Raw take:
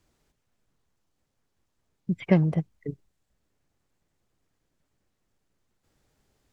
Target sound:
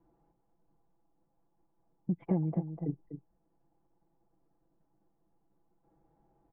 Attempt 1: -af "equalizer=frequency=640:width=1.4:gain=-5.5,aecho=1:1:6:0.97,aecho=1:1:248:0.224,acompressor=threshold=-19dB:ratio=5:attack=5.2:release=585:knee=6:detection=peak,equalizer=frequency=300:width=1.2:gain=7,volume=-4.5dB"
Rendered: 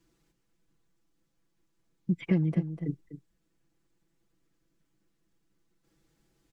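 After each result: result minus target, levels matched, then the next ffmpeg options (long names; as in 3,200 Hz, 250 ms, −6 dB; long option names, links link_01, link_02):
1,000 Hz band −10.0 dB; downward compressor: peak gain reduction −5 dB
-af "equalizer=frequency=640:width=1.4:gain=-5.5,aecho=1:1:6:0.97,aecho=1:1:248:0.224,acompressor=threshold=-19dB:ratio=5:attack=5.2:release=585:knee=6:detection=peak,lowpass=frequency=810:width_type=q:width=4.5,equalizer=frequency=300:width=1.2:gain=7,volume=-4.5dB"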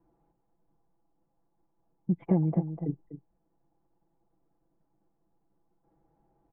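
downward compressor: peak gain reduction −5 dB
-af "equalizer=frequency=640:width=1.4:gain=-5.5,aecho=1:1:6:0.97,aecho=1:1:248:0.224,acompressor=threshold=-25.5dB:ratio=5:attack=5.2:release=585:knee=6:detection=peak,lowpass=frequency=810:width_type=q:width=4.5,equalizer=frequency=300:width=1.2:gain=7,volume=-4.5dB"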